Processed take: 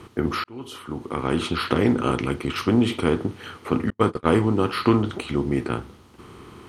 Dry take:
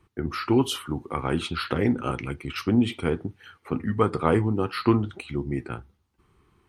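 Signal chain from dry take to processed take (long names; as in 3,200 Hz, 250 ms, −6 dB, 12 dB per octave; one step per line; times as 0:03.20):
compressor on every frequency bin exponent 0.6
0:00.44–0:01.56: fade in
0:03.90–0:04.37: noise gate −19 dBFS, range −48 dB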